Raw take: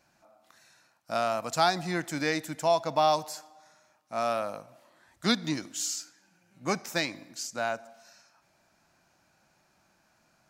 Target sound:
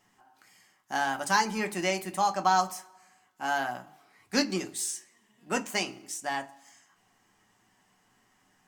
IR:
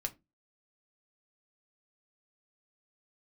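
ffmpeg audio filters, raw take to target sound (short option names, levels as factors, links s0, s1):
-filter_complex "[0:a]asetrate=53361,aresample=44100[s0];[1:a]atrim=start_sample=2205[s1];[s0][s1]afir=irnorm=-1:irlink=0"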